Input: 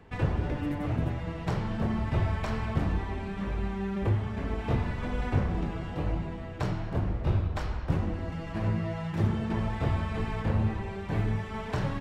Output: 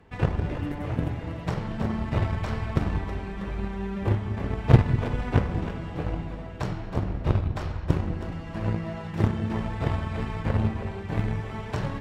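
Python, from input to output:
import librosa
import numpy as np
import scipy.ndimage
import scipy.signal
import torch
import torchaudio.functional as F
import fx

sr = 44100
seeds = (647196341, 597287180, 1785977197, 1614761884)

y = fx.peak_eq(x, sr, hz=120.0, db=9.0, octaves=0.73, at=(4.39, 5.1))
y = fx.cheby_harmonics(y, sr, harmonics=(3,), levels_db=(-13,), full_scale_db=-13.5)
y = fx.echo_split(y, sr, split_hz=360.0, low_ms=198, high_ms=321, feedback_pct=52, wet_db=-10.0)
y = y * librosa.db_to_amplitude(8.0)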